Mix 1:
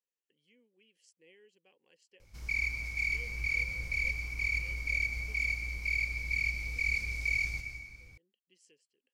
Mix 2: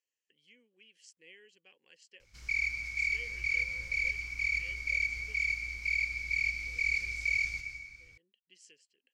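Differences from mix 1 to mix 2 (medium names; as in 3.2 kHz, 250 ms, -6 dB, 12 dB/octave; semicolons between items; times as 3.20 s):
background -7.5 dB; master: add high-order bell 3.2 kHz +8.5 dB 2.9 oct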